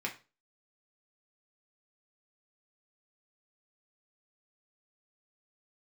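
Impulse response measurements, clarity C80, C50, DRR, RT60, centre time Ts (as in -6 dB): 18.5 dB, 12.5 dB, -1.0 dB, 0.30 s, 14 ms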